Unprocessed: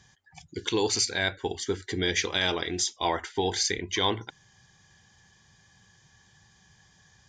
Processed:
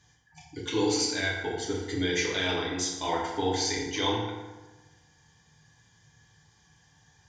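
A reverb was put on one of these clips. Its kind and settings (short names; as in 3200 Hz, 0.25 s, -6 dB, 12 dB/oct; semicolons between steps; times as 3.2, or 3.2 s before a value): FDN reverb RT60 1.2 s, low-frequency decay 1×, high-frequency decay 0.6×, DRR -4.5 dB; gain -7 dB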